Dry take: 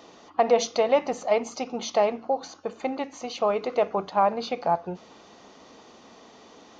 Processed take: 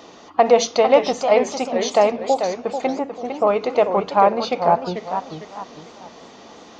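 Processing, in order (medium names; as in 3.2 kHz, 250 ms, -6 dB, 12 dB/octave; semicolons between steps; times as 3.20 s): 2.88–3.47 s: low-pass 1.2 kHz 12 dB/octave; modulated delay 447 ms, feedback 36%, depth 218 cents, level -8 dB; trim +6.5 dB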